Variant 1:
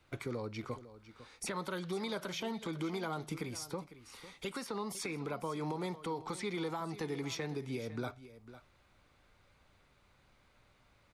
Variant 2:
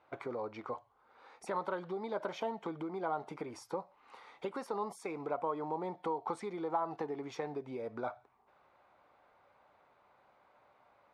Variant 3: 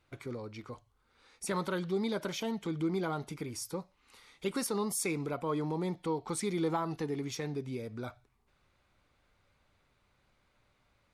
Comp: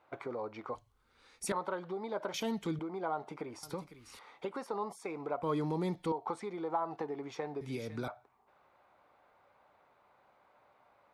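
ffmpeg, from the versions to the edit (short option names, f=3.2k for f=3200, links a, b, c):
-filter_complex "[2:a]asplit=3[a][b][c];[0:a]asplit=2[d][e];[1:a]asplit=6[f][g][h][i][j][k];[f]atrim=end=0.752[l];[a]atrim=start=0.748:end=1.522[m];[g]atrim=start=1.518:end=2.342[n];[b]atrim=start=2.338:end=2.792[o];[h]atrim=start=2.788:end=3.632[p];[d]atrim=start=3.628:end=4.192[q];[i]atrim=start=4.188:end=5.432[r];[c]atrim=start=5.428:end=6.122[s];[j]atrim=start=6.118:end=7.612[t];[e]atrim=start=7.608:end=8.082[u];[k]atrim=start=8.078[v];[l][m]acrossfade=d=0.004:c1=hsin:c2=hsin[w];[w][n]acrossfade=d=0.004:c1=hsin:c2=hsin[x];[x][o]acrossfade=d=0.004:c1=hsin:c2=hsin[y];[y][p]acrossfade=d=0.004:c1=hsin:c2=hsin[z];[z][q]acrossfade=d=0.004:c1=hsin:c2=hsin[aa];[aa][r]acrossfade=d=0.004:c1=hsin:c2=hsin[ab];[ab][s]acrossfade=d=0.004:c1=hsin:c2=hsin[ac];[ac][t]acrossfade=d=0.004:c1=hsin:c2=hsin[ad];[ad][u]acrossfade=d=0.004:c1=hsin:c2=hsin[ae];[ae][v]acrossfade=d=0.004:c1=hsin:c2=hsin"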